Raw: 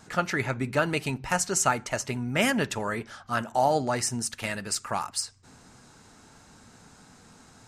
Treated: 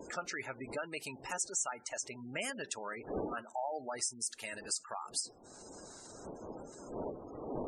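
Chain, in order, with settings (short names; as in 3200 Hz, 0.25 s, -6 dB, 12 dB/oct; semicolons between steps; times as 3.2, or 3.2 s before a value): wind noise 390 Hz -31 dBFS; tone controls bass -13 dB, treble +10 dB; compressor 2:1, threshold -42 dBFS, peak gain reduction 16 dB; spectral gate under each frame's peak -15 dB strong; gain -2 dB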